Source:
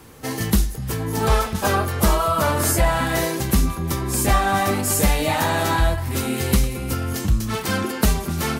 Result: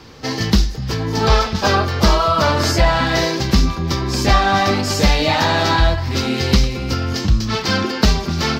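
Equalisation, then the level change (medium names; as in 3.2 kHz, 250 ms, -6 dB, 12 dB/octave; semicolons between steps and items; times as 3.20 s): resonant high shelf 7.1 kHz -14 dB, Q 3; +4.0 dB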